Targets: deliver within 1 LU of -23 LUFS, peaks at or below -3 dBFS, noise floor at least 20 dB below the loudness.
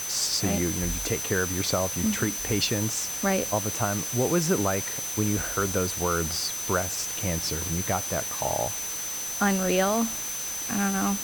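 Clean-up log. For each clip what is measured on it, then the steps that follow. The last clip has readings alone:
steady tone 6.1 kHz; tone level -32 dBFS; noise floor -33 dBFS; noise floor target -46 dBFS; loudness -26.0 LUFS; peak level -10.0 dBFS; loudness target -23.0 LUFS
-> band-stop 6.1 kHz, Q 30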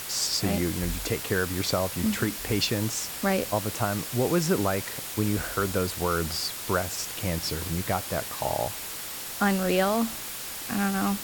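steady tone not found; noise floor -36 dBFS; noise floor target -48 dBFS
-> noise reduction 12 dB, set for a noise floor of -36 dBFS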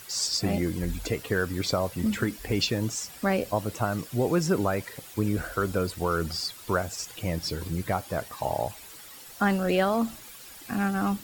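noise floor -46 dBFS; noise floor target -49 dBFS
-> noise reduction 6 dB, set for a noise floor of -46 dBFS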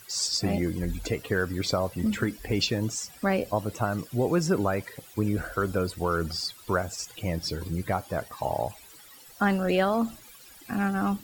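noise floor -50 dBFS; loudness -28.5 LUFS; peak level -11.5 dBFS; loudness target -23.0 LUFS
-> trim +5.5 dB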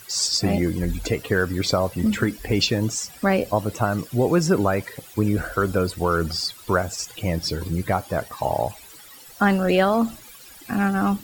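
loudness -23.0 LUFS; peak level -6.0 dBFS; noise floor -45 dBFS

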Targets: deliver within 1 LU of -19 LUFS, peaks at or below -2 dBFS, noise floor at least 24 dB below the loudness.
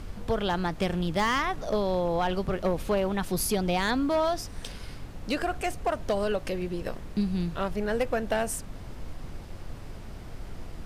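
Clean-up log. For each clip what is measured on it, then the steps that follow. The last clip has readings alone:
clipped samples 1.0%; clipping level -19.5 dBFS; noise floor -41 dBFS; noise floor target -53 dBFS; loudness -29.0 LUFS; peak level -19.5 dBFS; loudness target -19.0 LUFS
-> clip repair -19.5 dBFS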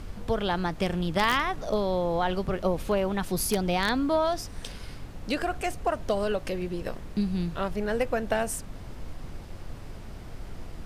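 clipped samples 0.0%; noise floor -41 dBFS; noise floor target -53 dBFS
-> noise print and reduce 12 dB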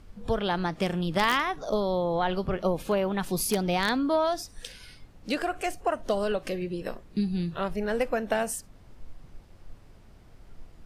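noise floor -53 dBFS; loudness -28.5 LUFS; peak level -10.5 dBFS; loudness target -19.0 LUFS
-> trim +9.5 dB; peak limiter -2 dBFS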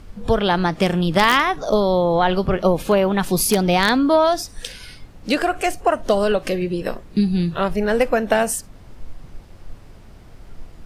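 loudness -19.0 LUFS; peak level -2.0 dBFS; noise floor -43 dBFS

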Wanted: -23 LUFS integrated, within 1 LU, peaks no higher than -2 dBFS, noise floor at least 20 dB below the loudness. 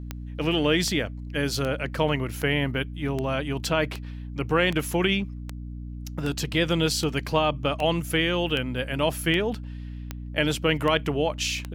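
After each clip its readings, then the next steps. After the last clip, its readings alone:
clicks found 16; hum 60 Hz; highest harmonic 300 Hz; hum level -33 dBFS; loudness -25.5 LUFS; peak level -8.0 dBFS; loudness target -23.0 LUFS
-> de-click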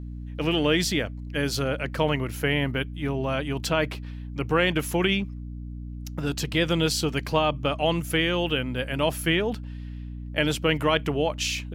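clicks found 0; hum 60 Hz; highest harmonic 300 Hz; hum level -33 dBFS
-> de-hum 60 Hz, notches 5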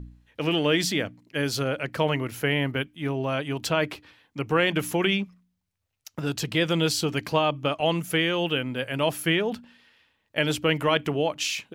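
hum not found; loudness -26.0 LUFS; peak level -8.0 dBFS; loudness target -23.0 LUFS
-> trim +3 dB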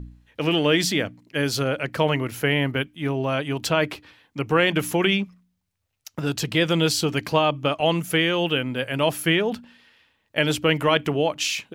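loudness -23.0 LUFS; peak level -5.0 dBFS; noise floor -73 dBFS

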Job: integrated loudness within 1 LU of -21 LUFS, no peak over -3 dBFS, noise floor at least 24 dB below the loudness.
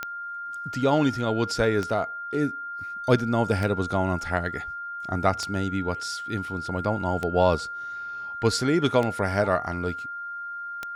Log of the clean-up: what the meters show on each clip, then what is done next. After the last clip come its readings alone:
clicks found 7; steady tone 1.4 kHz; tone level -32 dBFS; loudness -26.5 LUFS; peak level -6.5 dBFS; loudness target -21.0 LUFS
-> de-click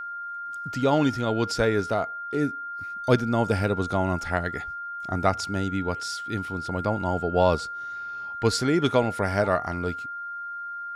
clicks found 0; steady tone 1.4 kHz; tone level -32 dBFS
-> band-stop 1.4 kHz, Q 30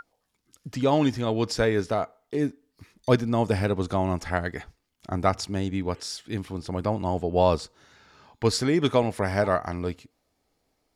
steady tone not found; loudness -26.0 LUFS; peak level -7.0 dBFS; loudness target -21.0 LUFS
-> trim +5 dB; peak limiter -3 dBFS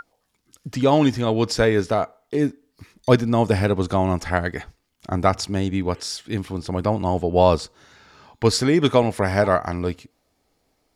loudness -21.5 LUFS; peak level -3.0 dBFS; noise floor -70 dBFS

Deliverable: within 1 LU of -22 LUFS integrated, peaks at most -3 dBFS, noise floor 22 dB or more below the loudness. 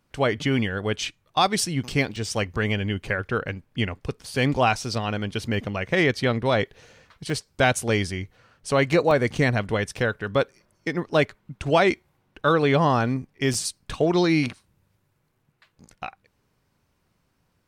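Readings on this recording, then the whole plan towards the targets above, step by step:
dropouts 4; longest dropout 2.3 ms; loudness -24.0 LUFS; peak level -6.5 dBFS; loudness target -22.0 LUFS
-> interpolate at 2.16/7.30/9.11/13.54 s, 2.3 ms; trim +2 dB

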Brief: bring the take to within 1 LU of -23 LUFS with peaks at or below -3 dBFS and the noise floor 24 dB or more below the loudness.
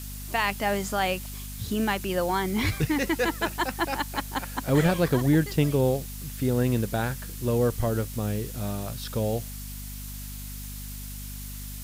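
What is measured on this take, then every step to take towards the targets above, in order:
hum 50 Hz; highest harmonic 250 Hz; hum level -36 dBFS; noise floor -37 dBFS; noise floor target -51 dBFS; loudness -27.0 LUFS; peak level -9.5 dBFS; loudness target -23.0 LUFS
-> hum notches 50/100/150/200/250 Hz; noise reduction 14 dB, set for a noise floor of -37 dBFS; trim +4 dB

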